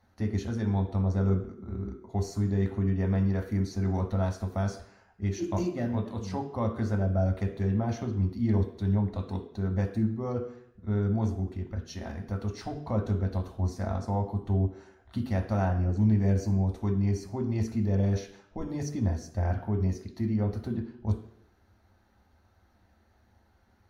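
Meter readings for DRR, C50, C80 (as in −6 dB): 3.0 dB, 9.5 dB, 12.0 dB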